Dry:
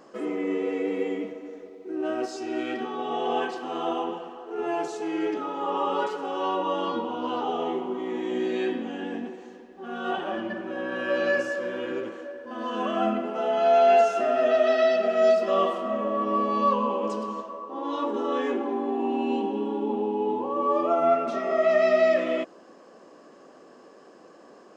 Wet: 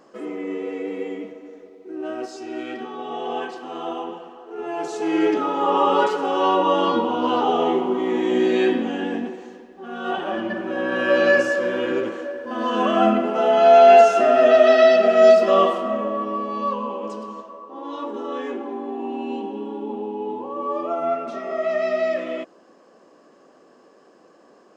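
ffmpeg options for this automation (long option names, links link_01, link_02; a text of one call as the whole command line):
ffmpeg -i in.wav -af "volume=15dB,afade=type=in:start_time=4.74:duration=0.42:silence=0.334965,afade=type=out:start_time=8.77:duration=1.13:silence=0.446684,afade=type=in:start_time=9.9:duration=1.13:silence=0.473151,afade=type=out:start_time=15.42:duration=0.96:silence=0.316228" out.wav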